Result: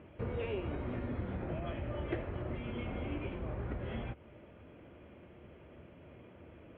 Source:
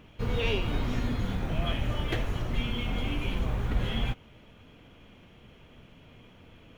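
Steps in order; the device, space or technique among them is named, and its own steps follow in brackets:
bass amplifier (downward compressor, threshold −31 dBFS, peak gain reduction 10 dB; loudspeaker in its box 65–2,400 Hz, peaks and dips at 72 Hz +8 dB, 350 Hz +9 dB, 580 Hz +8 dB)
level −3 dB

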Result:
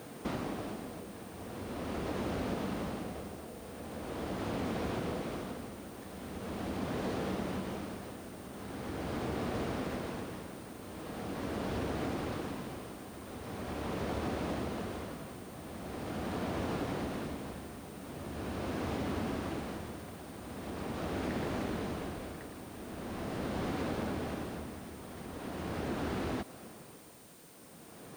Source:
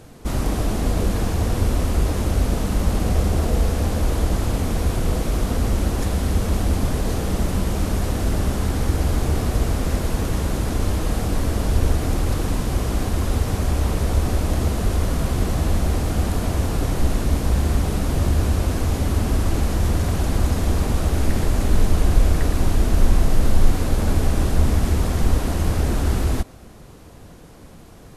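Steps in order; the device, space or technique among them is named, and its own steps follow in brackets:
medium wave at night (band-pass filter 180–3,600 Hz; downward compressor, threshold −32 dBFS, peak gain reduction 10 dB; amplitude tremolo 0.42 Hz, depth 74%; steady tone 9,000 Hz −63 dBFS; white noise bed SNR 21 dB)

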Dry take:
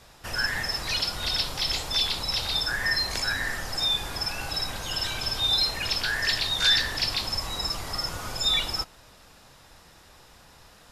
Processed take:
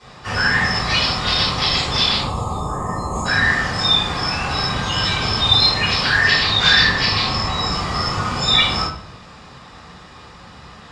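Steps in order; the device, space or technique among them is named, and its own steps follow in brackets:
0:02.20–0:03.26: gain on a spectral selection 1,300–6,400 Hz −26 dB
0:06.25–0:07.71: low-pass filter 7,900 Hz 12 dB per octave
car door speaker (loudspeaker in its box 81–7,000 Hz, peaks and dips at 190 Hz +7 dB, 1,100 Hz +7 dB, 6,000 Hz −6 dB)
rectangular room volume 73 cubic metres, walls mixed, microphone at 3.6 metres
level −2.5 dB

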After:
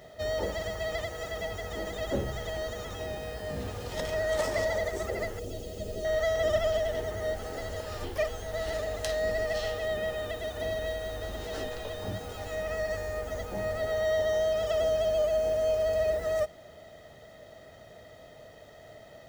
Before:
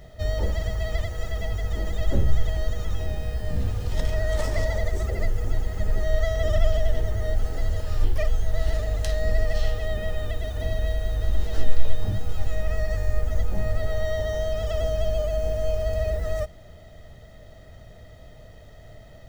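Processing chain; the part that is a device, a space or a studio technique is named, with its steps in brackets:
filter by subtraction (in parallel: low-pass filter 510 Hz 12 dB per octave + polarity inversion)
0:05.39–0:06.05: on the sum: flat-topped bell 1,300 Hz −15 dB

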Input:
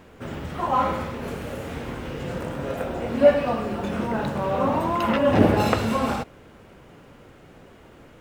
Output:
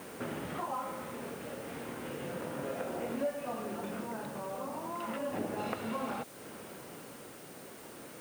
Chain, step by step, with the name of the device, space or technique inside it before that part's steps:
medium wave at night (band-pass filter 180–3,600 Hz; downward compressor 4 to 1, threshold −40 dBFS, peak gain reduction 24.5 dB; amplitude tremolo 0.33 Hz, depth 39%; steady tone 9,000 Hz −64 dBFS; white noise bed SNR 16 dB)
level +3.5 dB

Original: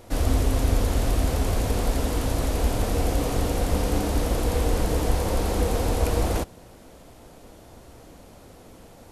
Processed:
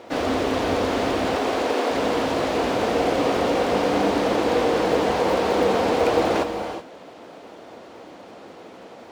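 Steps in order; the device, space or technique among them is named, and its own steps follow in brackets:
0:01.36–0:01.91: Butterworth high-pass 250 Hz
early digital voice recorder (band-pass filter 290–3,700 Hz; one scale factor per block 7 bits)
reverb whose tail is shaped and stops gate 400 ms rising, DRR 7.5 dB
level +8 dB

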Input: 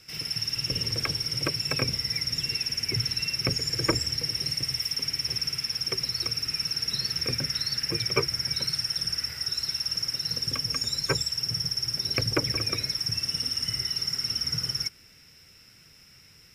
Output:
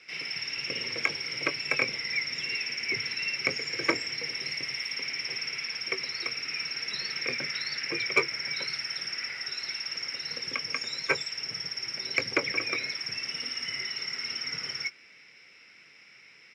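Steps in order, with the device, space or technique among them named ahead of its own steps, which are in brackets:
intercom (band-pass filter 320–4,000 Hz; parametric band 2,200 Hz +11 dB 0.47 octaves; soft clipping −11.5 dBFS, distortion −20 dB; double-tracking delay 21 ms −11 dB)

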